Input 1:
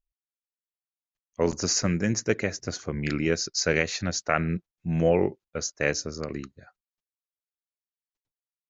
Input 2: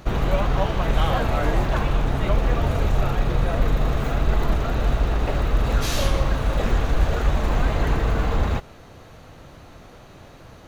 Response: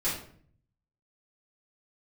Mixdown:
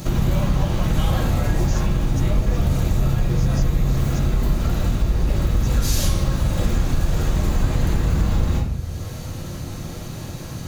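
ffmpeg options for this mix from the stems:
-filter_complex "[0:a]volume=-13.5dB,asplit=2[a][b];[1:a]highpass=f=120:p=1,volume=0dB,asplit=2[c][d];[d]volume=-3.5dB[e];[b]apad=whole_len=470964[f];[c][f]sidechaincompress=threshold=-42dB:ratio=8:attack=38:release=194[g];[2:a]atrim=start_sample=2205[h];[e][h]afir=irnorm=-1:irlink=0[i];[a][g][i]amix=inputs=3:normalize=0,bass=f=250:g=14,treble=f=4k:g=15,acompressor=threshold=-25dB:ratio=2"

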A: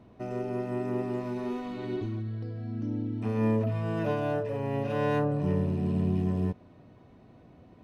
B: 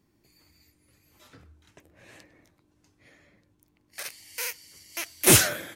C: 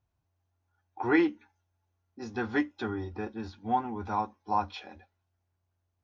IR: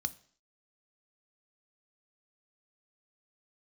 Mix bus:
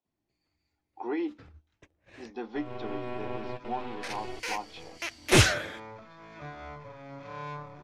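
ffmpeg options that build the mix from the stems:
-filter_complex "[0:a]highpass=f=420:w=0.5412,highpass=f=420:w=1.3066,dynaudnorm=f=160:g=5:m=8dB,aeval=exprs='max(val(0),0)':c=same,adelay=2350,volume=-2.5dB,asplit=2[a][b];[b]volume=-11dB[c];[1:a]agate=range=-17dB:threshold=-53dB:ratio=16:detection=peak,asubboost=boost=4.5:cutoff=79,adelay=50,volume=0.5dB[d];[2:a]highpass=f=250:w=0.5412,highpass=f=250:w=1.3066,equalizer=f=1.5k:t=o:w=0.84:g=-12,alimiter=limit=-21.5dB:level=0:latency=1:release=110,volume=-2.5dB,asplit=2[e][f];[f]apad=whole_len=449069[g];[a][g]sidechaingate=range=-33dB:threshold=-55dB:ratio=16:detection=peak[h];[3:a]atrim=start_sample=2205[i];[c][i]afir=irnorm=-1:irlink=0[j];[h][d][e][j]amix=inputs=4:normalize=0,lowpass=4.7k"

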